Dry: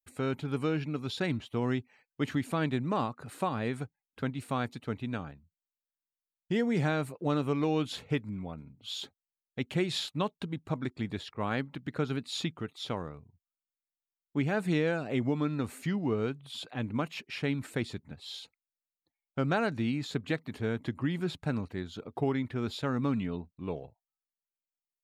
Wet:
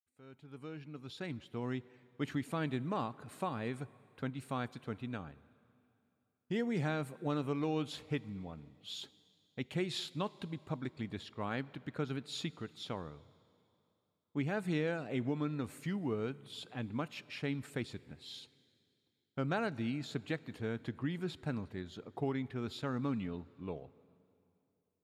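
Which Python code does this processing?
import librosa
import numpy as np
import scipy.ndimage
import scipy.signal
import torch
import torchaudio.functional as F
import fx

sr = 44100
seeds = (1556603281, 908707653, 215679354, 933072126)

y = fx.fade_in_head(x, sr, length_s=2.16)
y = fx.rev_plate(y, sr, seeds[0], rt60_s=2.8, hf_ratio=0.95, predelay_ms=0, drr_db=19.5)
y = F.gain(torch.from_numpy(y), -6.0).numpy()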